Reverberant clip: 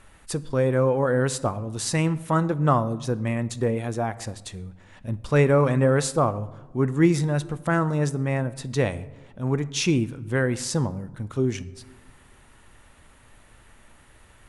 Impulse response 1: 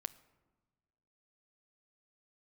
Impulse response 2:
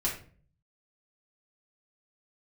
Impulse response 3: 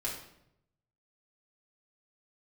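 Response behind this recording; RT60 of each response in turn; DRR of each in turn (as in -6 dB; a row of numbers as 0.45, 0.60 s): 1; not exponential, 0.45 s, 0.80 s; 14.0, -5.5, -4.5 dB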